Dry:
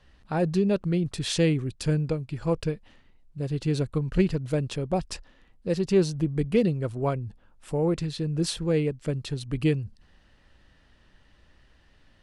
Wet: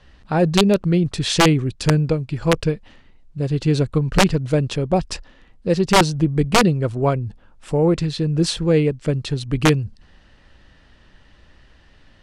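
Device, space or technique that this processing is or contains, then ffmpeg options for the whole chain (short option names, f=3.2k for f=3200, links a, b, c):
overflowing digital effects unit: -af "aeval=exprs='(mod(5.31*val(0)+1,2)-1)/5.31':c=same,lowpass=8.3k,volume=8dB"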